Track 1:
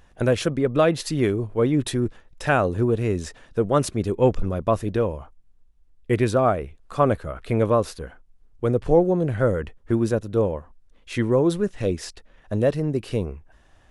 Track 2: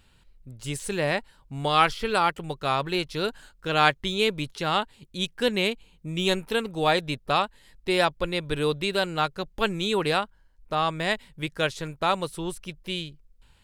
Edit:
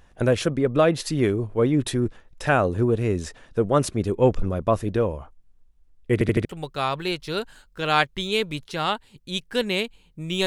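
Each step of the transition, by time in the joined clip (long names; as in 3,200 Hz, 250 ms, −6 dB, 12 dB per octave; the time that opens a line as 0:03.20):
track 1
0:06.13: stutter in place 0.08 s, 4 plays
0:06.45: continue with track 2 from 0:02.32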